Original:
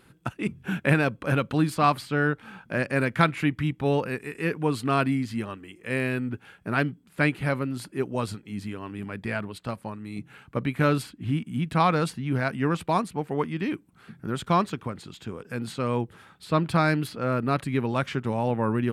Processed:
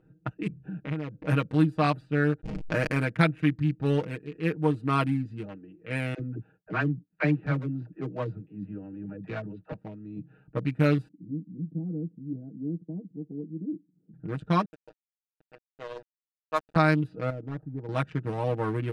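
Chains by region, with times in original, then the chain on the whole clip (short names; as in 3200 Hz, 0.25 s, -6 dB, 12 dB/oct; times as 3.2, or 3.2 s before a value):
0.64–1.14 high shelf 7200 Hz -9 dB + compressor 2:1, threshold -35 dBFS
2.41–2.98 backlash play -32.5 dBFS + fast leveller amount 70%
6.14–9.73 dispersion lows, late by 57 ms, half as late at 430 Hz + expander -47 dBFS + LPF 3000 Hz
11.08–14.14 tube stage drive 19 dB, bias 0.45 + Butterworth band-pass 250 Hz, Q 1.3 + air absorption 400 m
14.65–16.76 BPF 750–3600 Hz + sample gate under -31.5 dBFS
17.3–17.89 CVSD 32 kbps + ladder low-pass 1300 Hz, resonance 35%
whole clip: Wiener smoothing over 41 samples; low-pass opened by the level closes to 2900 Hz, open at -22 dBFS; comb 6.4 ms, depth 80%; gain -3.5 dB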